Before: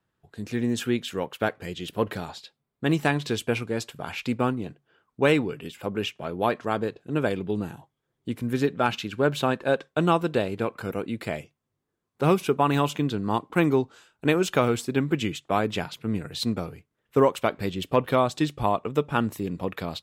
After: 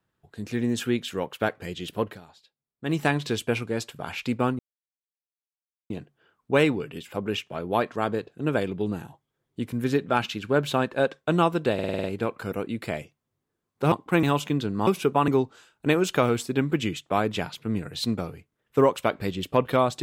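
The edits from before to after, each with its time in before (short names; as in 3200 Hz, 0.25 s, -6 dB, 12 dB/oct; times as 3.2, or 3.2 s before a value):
1.96–3.01 dip -14.5 dB, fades 0.24 s
4.59 insert silence 1.31 s
10.43 stutter 0.05 s, 7 plays
12.31–12.72 swap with 13.36–13.67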